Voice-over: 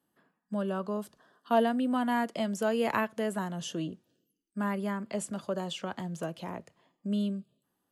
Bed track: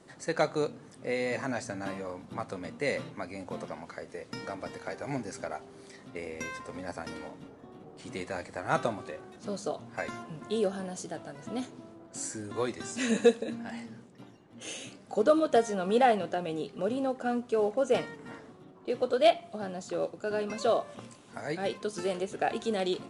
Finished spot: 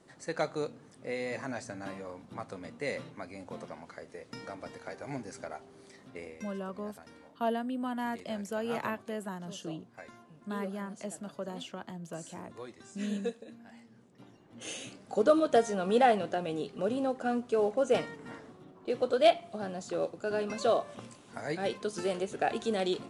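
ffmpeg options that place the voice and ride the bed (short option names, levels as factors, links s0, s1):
-filter_complex "[0:a]adelay=5900,volume=0.501[s0];[1:a]volume=2.66,afade=t=out:st=6.22:d=0.23:silence=0.354813,afade=t=in:st=13.9:d=0.6:silence=0.223872[s1];[s0][s1]amix=inputs=2:normalize=0"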